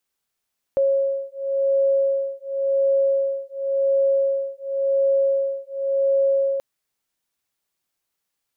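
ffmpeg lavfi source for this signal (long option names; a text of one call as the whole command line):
ffmpeg -f lavfi -i "aevalsrc='0.0891*(sin(2*PI*547*t)+sin(2*PI*547.92*t))':duration=5.83:sample_rate=44100" out.wav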